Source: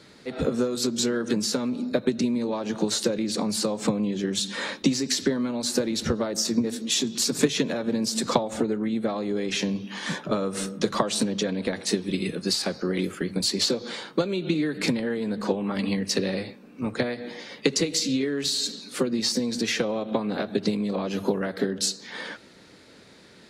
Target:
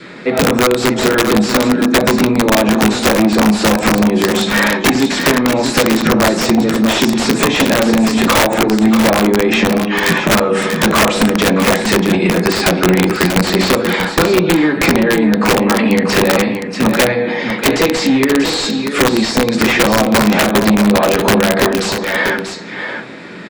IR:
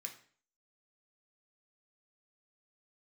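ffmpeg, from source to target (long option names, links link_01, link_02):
-filter_complex "[0:a]asplit=2[link_01][link_02];[1:a]atrim=start_sample=2205,afade=type=out:start_time=0.15:duration=0.01,atrim=end_sample=7056[link_03];[link_02][link_03]afir=irnorm=-1:irlink=0,volume=5dB[link_04];[link_01][link_04]amix=inputs=2:normalize=0,aeval=exprs='0.794*sin(PI/2*5.01*val(0)/0.794)':channel_layout=same,lowpass=1800,aemphasis=mode=production:type=50kf,bandreject=frequency=48.36:width_type=h:width=4,bandreject=frequency=96.72:width_type=h:width=4,bandreject=frequency=145.08:width_type=h:width=4,bandreject=frequency=193.44:width_type=h:width=4,bandreject=frequency=241.8:width_type=h:width=4,bandreject=frequency=290.16:width_type=h:width=4,bandreject=frequency=338.52:width_type=h:width=4,bandreject=frequency=386.88:width_type=h:width=4,bandreject=frequency=435.24:width_type=h:width=4,bandreject=frequency=483.6:width_type=h:width=4,bandreject=frequency=531.96:width_type=h:width=4,bandreject=frequency=580.32:width_type=h:width=4,bandreject=frequency=628.68:width_type=h:width=4,bandreject=frequency=677.04:width_type=h:width=4,bandreject=frequency=725.4:width_type=h:width=4,bandreject=frequency=773.76:width_type=h:width=4,bandreject=frequency=822.12:width_type=h:width=4,bandreject=frequency=870.48:width_type=h:width=4,bandreject=frequency=918.84:width_type=h:width=4,bandreject=frequency=967.2:width_type=h:width=4,bandreject=frequency=1015.56:width_type=h:width=4,bandreject=frequency=1063.92:width_type=h:width=4,bandreject=frequency=1112.28:width_type=h:width=4,acompressor=threshold=-12dB:ratio=2.5,adynamicequalizer=threshold=0.0355:dfrequency=760:dqfactor=2.1:tfrequency=760:tqfactor=2.1:attack=5:release=100:ratio=0.375:range=2.5:mode=boostabove:tftype=bell,aeval=exprs='(mod(1.88*val(0)+1,2)-1)/1.88':channel_layout=same,aecho=1:1:638:0.422"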